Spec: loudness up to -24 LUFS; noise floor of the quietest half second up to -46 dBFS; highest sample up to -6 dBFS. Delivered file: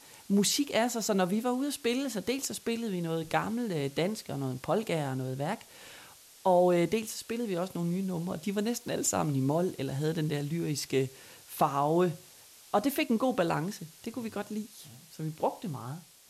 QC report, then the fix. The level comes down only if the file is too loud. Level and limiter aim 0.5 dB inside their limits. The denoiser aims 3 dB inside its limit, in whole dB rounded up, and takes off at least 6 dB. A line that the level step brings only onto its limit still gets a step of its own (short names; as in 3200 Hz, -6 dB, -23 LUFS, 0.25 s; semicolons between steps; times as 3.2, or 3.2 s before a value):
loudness -31.0 LUFS: OK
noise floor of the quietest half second -55 dBFS: OK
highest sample -13.5 dBFS: OK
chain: none